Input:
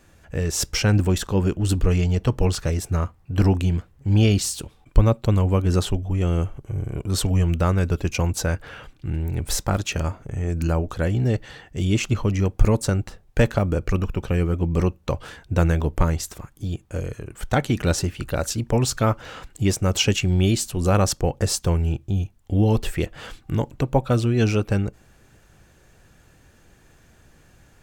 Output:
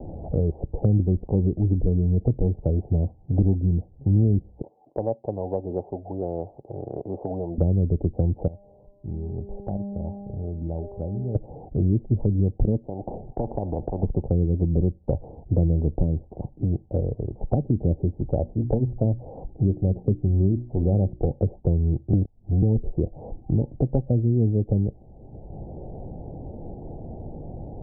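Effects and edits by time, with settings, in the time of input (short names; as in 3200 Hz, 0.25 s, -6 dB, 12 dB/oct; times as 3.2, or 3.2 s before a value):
4.62–7.58 HPF 550 Hz
8.47–11.35 resonator 200 Hz, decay 1.6 s, mix 90%
12.85–14.03 spectral compressor 4:1
18.38–21.29 notches 60/120/180/240/300/360 Hz
22.13–22.62 reverse
whole clip: treble ducked by the level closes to 390 Hz, closed at -17 dBFS; steep low-pass 820 Hz 72 dB/oct; three-band squash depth 70%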